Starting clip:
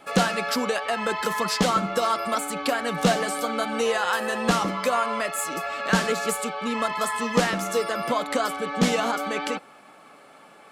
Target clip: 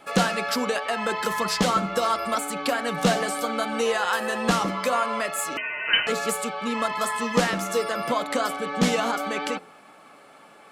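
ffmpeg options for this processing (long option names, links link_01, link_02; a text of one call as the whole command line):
ffmpeg -i in.wav -filter_complex "[0:a]asettb=1/sr,asplit=3[link_01][link_02][link_03];[link_01]atrim=end=5.574[link_04];[link_02]atrim=start=5.57:end=6.07,asetpts=PTS-STARTPTS,afade=type=in:duration=0.004:curve=qsin,afade=type=out:start_time=0.496:duration=0.004:curve=qsin,lowpass=frequency=2700:width_type=q:width=0.5098,lowpass=frequency=2700:width_type=q:width=0.6013,lowpass=frequency=2700:width_type=q:width=0.9,lowpass=frequency=2700:width_type=q:width=2.563,afreqshift=-3200[link_05];[link_03]atrim=start=6.066[link_06];[link_04][link_05]acrossfade=duration=0.004:curve1=hsin:curve2=qsin[link_07];[link_07][link_06]acrossfade=duration=0.004:curve1=qsin:curve2=hsin,bandreject=frequency=87.07:width_type=h:width=4,bandreject=frequency=174.14:width_type=h:width=4,bandreject=frequency=261.21:width_type=h:width=4,bandreject=frequency=348.28:width_type=h:width=4,bandreject=frequency=435.35:width_type=h:width=4,bandreject=frequency=522.42:width_type=h:width=4,bandreject=frequency=609.49:width_type=h:width=4,bandreject=frequency=696.56:width_type=h:width=4,bandreject=frequency=783.63:width_type=h:width=4,asettb=1/sr,asplit=3[link_08][link_09][link_10];[link_08]atrim=end=1.264[link_11];[link_09]atrim=start=1.26:end=2.37,asetpts=PTS-STARTPTS,afade=type=in:duration=0.004:curve=qsin,afade=type=out:start_time=1.106:duration=0.004:curve=qsin,aeval=exprs='val(0)+0.00141*(sin(2*PI*60*n/s)+sin(2*PI*2*60*n/s)/2+sin(2*PI*3*60*n/s)/3+sin(2*PI*4*60*n/s)/4+sin(2*PI*5*60*n/s)/5)':channel_layout=same[link_12];[link_10]atrim=start=2.366[link_13];[link_11][link_12]acrossfade=duration=0.004:curve1=hsin:curve2=qsin[link_14];[link_14][link_13]acrossfade=duration=0.004:curve1=qsin:curve2=hsin" out.wav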